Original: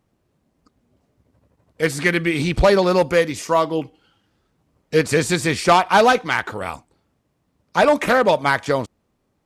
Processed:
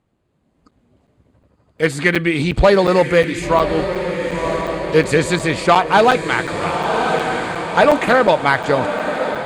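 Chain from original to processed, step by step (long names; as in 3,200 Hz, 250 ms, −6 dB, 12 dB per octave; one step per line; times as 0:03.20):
low-pass filter 8,300 Hz 12 dB per octave
parametric band 5,600 Hz −11 dB 0.29 octaves
on a send: feedback delay with all-pass diffusion 1,069 ms, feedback 61%, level −8 dB
on the sum: automatic gain control gain up to 6 dB
regular buffer underruns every 0.36 s, samples 256, zero, from 0:00.71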